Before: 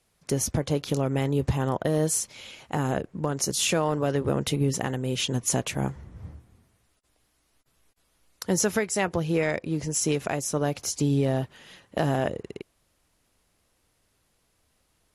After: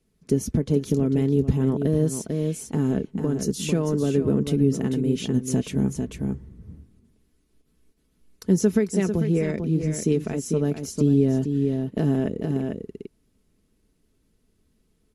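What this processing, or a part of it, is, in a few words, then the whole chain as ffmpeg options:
ducked delay: -filter_complex "[0:a]lowshelf=f=490:t=q:w=1.5:g=12,aecho=1:1:4.6:0.41,asplit=3[s0][s1][s2];[s1]adelay=446,volume=0.631[s3];[s2]apad=whole_len=687900[s4];[s3][s4]sidechaincompress=threshold=0.141:ratio=8:attack=45:release=361[s5];[s0][s5]amix=inputs=2:normalize=0,volume=0.398"

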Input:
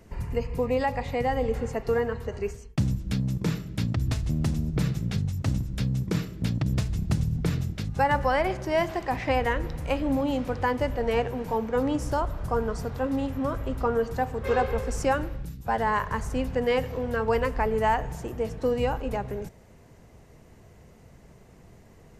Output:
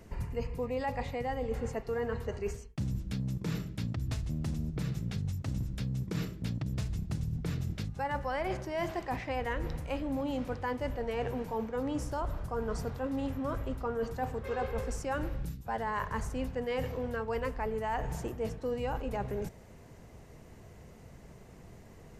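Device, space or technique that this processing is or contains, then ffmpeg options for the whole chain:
compression on the reversed sound: -af "areverse,acompressor=threshold=0.0282:ratio=6,areverse"

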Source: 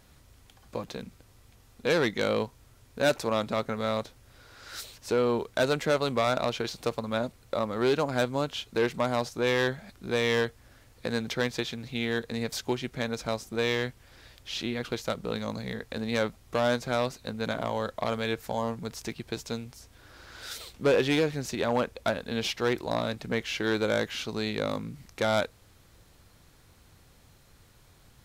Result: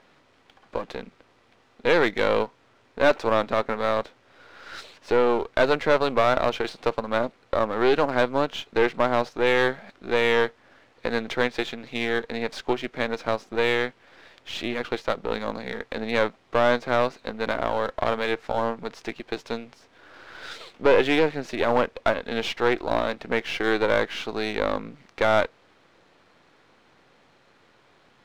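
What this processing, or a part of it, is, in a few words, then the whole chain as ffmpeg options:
crystal radio: -af "highpass=290,lowpass=2900,aeval=exprs='if(lt(val(0),0),0.447*val(0),val(0))':c=same,volume=2.66"

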